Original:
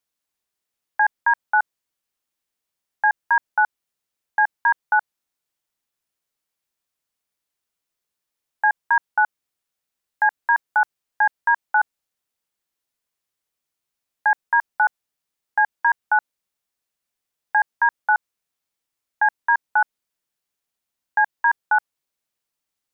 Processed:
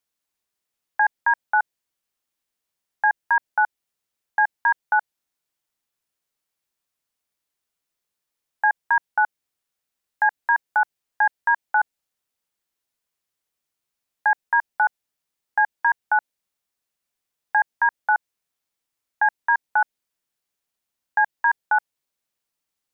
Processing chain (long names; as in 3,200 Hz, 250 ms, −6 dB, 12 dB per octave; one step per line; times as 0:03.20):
dynamic equaliser 1,200 Hz, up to −5 dB, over −34 dBFS, Q 3.1